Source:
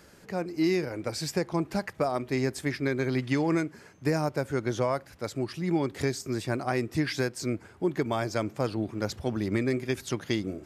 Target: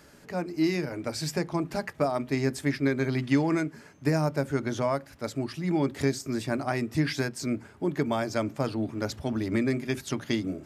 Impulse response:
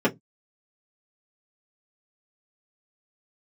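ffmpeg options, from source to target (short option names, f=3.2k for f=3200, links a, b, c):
-filter_complex "[0:a]equalizer=f=380:t=o:w=0.72:g=-5.5,asplit=2[a][b];[1:a]atrim=start_sample=2205,lowshelf=f=360:g=6[c];[b][c]afir=irnorm=-1:irlink=0,volume=-27dB[d];[a][d]amix=inputs=2:normalize=0"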